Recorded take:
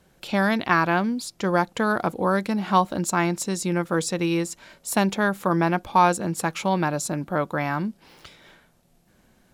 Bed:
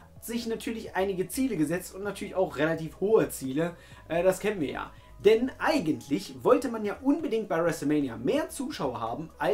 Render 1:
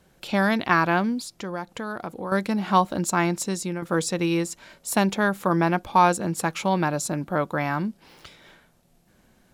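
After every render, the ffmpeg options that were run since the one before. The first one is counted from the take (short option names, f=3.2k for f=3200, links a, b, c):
-filter_complex "[0:a]asettb=1/sr,asplit=3[a][b][c];[a]atrim=end=1.214[d];[b]atrim=start=1.21:end=2.32,asetpts=PTS-STARTPTS,afade=t=in:d=0.004:c=qsin,afade=t=out:st=1.106:d=0.004:c=qsin,acompressor=threshold=-35dB:ratio=2:attack=3.2:release=140:knee=1:detection=peak[e];[c]atrim=start=2.316[f];[d][e]acrossfade=d=0.004:c1=hsin:c2=qsin[g];[g][f]acrossfade=d=0.004:c1=qsin:c2=hsin,asplit=2[h][i];[h]atrim=end=3.82,asetpts=PTS-STARTPTS,afade=t=out:st=3.38:d=0.44:c=qsin:silence=0.316228[j];[i]atrim=start=3.82,asetpts=PTS-STARTPTS,afade=t=in:d=0.004:c=hsin:silence=0.316228[k];[j][k]concat=n=2:v=0:a=1"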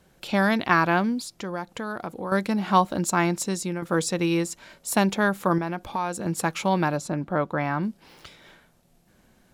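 -filter_complex "[0:a]asettb=1/sr,asplit=3[a][b][c];[a]atrim=end=5.584[d];[b]atrim=start=5.58:end=6.26,asetpts=PTS-STARTPTS,afade=t=in:d=0.004:c=qsin,afade=t=out:st=0.676:d=0.004:c=qsin,acompressor=threshold=-28dB:ratio=2.5:attack=3.2:release=140:knee=1:detection=peak[e];[c]atrim=start=6.256[f];[d][e]acrossfade=d=0.004:c1=hsin:c2=qsin[g];[g][f]acrossfade=d=0.004:c1=qsin:c2=hsin,asettb=1/sr,asplit=3[h][i][j];[h]atrim=end=6.974[k];[i]atrim=start=6.97:end=7.83,asetpts=PTS-STARTPTS,afade=t=in:d=0.004:c=qsin,afade=t=out:st=0.856:d=0.004:c=qsin,lowpass=f=2.6k:p=1[l];[j]atrim=start=7.826[m];[k][l]acrossfade=d=0.004:c1=hsin:c2=qsin[n];[n][m]acrossfade=d=0.004:c1=qsin:c2=hsin"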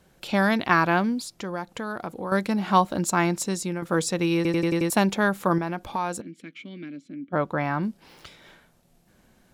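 -filter_complex "[0:a]asplit=3[a][b][c];[a]afade=t=out:st=6.2:d=0.02[d];[b]asplit=3[e][f][g];[e]bandpass=f=270:t=q:w=8,volume=0dB[h];[f]bandpass=f=2.29k:t=q:w=8,volume=-6dB[i];[g]bandpass=f=3.01k:t=q:w=8,volume=-9dB[j];[h][i][j]amix=inputs=3:normalize=0,afade=t=in:st=6.2:d=0.02,afade=t=out:st=7.32:d=0.02[k];[c]afade=t=in:st=7.32:d=0.02[l];[d][k][l]amix=inputs=3:normalize=0,asplit=7[m][n][o][p][q][r][s];[m]atrim=end=4.452[t];[n]atrim=start=4.358:end=4.452[u];[o]atrim=start=4.358:end=4.452[v];[p]atrim=start=4.358:end=4.452[w];[q]atrim=start=4.358:end=4.452[x];[r]atrim=start=4.358:end=4.452[y];[s]atrim=start=4.898[z];[t][u]acrossfade=d=0.004:c1=hsin:c2=hsin[aa];[aa][v]acrossfade=d=0.004:c1=hsin:c2=hsin[ab];[ab][w]acrossfade=d=0.004:c1=hsin:c2=hsin[ac];[ac][x]acrossfade=d=0.004:c1=hsin:c2=hsin[ad];[ad][y]acrossfade=d=0.004:c1=hsin:c2=hsin[ae];[ae][z]acrossfade=d=0.004:c1=hsin:c2=hsin"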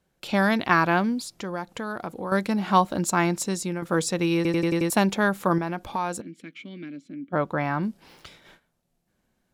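-af "agate=range=-13dB:threshold=-51dB:ratio=16:detection=peak"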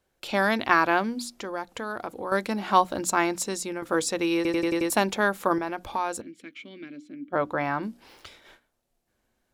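-af "equalizer=f=170:w=3:g=-13.5,bandreject=f=60:t=h:w=6,bandreject=f=120:t=h:w=6,bandreject=f=180:t=h:w=6,bandreject=f=240:t=h:w=6,bandreject=f=300:t=h:w=6"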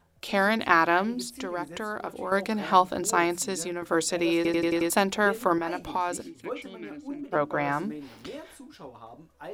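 -filter_complex "[1:a]volume=-13.5dB[a];[0:a][a]amix=inputs=2:normalize=0"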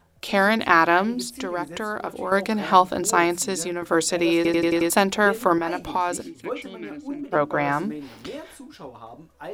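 -af "volume=4.5dB,alimiter=limit=-1dB:level=0:latency=1"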